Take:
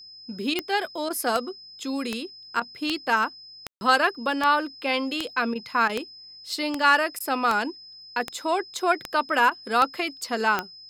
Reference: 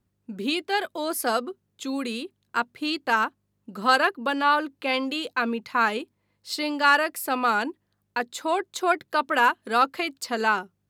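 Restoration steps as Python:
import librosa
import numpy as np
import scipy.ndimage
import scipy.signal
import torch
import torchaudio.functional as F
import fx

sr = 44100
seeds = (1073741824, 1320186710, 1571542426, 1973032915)

y = fx.fix_declick_ar(x, sr, threshold=10.0)
y = fx.notch(y, sr, hz=5100.0, q=30.0)
y = fx.fix_ambience(y, sr, seeds[0], print_start_s=6.01, print_end_s=6.51, start_s=3.67, end_s=3.81)
y = fx.fix_interpolate(y, sr, at_s=(0.54, 1.09, 2.6, 5.54, 5.88, 7.19, 9.5), length_ms=13.0)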